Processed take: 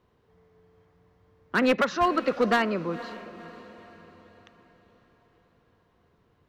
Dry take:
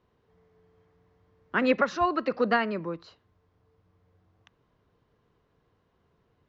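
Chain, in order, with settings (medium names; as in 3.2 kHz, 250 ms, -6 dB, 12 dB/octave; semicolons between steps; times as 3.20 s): hard clipper -19.5 dBFS, distortion -13 dB; echo that smears into a reverb 507 ms, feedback 47%, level -16 dB; trim +3 dB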